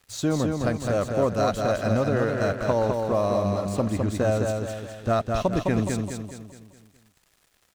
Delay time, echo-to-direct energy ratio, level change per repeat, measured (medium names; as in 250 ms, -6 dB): 209 ms, -3.0 dB, -6.5 dB